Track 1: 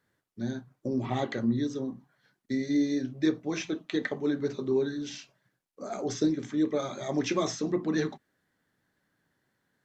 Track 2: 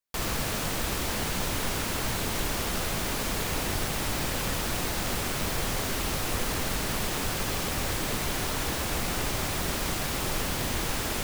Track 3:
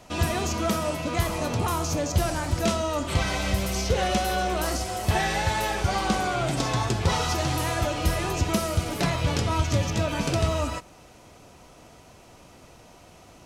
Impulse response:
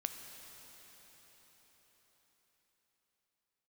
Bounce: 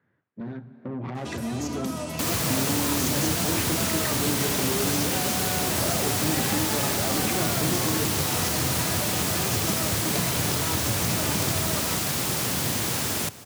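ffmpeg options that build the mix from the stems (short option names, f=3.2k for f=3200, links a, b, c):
-filter_complex "[0:a]lowpass=f=2.4k:w=0.5412,lowpass=f=2.4k:w=1.3066,alimiter=level_in=3.5dB:limit=-24dB:level=0:latency=1:release=180,volume=-3.5dB,aeval=exprs='(tanh(79.4*val(0)+0.65)-tanh(0.65))/79.4':c=same,volume=3dB,asplit=3[a][b][c];[b]volume=-4.5dB[d];[c]volume=-20.5dB[e];[1:a]adelay=2050,volume=-6dB,asplit=2[f][g];[g]volume=-17.5dB[h];[2:a]acompressor=threshold=-25dB:ratio=6,adelay=1150,volume=-7dB[i];[a][i]amix=inputs=2:normalize=0,acompressor=threshold=-36dB:ratio=6,volume=0dB[j];[3:a]atrim=start_sample=2205[k];[d][k]afir=irnorm=-1:irlink=0[l];[e][h]amix=inputs=2:normalize=0,aecho=0:1:328:1[m];[f][j][l][m]amix=inputs=4:normalize=0,dynaudnorm=f=590:g=5:m=7dB,highpass=f=94:w=0.5412,highpass=f=94:w=1.3066,bass=f=250:g=5,treble=f=4k:g=6"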